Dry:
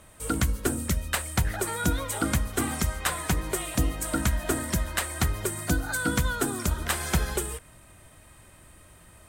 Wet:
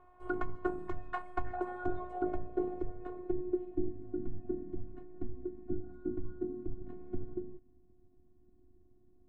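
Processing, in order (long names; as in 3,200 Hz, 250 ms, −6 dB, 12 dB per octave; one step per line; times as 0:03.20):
pitch vibrato 0.91 Hz 23 cents
phases set to zero 362 Hz
low-pass filter sweep 1,000 Hz → 260 Hz, 0:01.36–0:04.07
level −5.5 dB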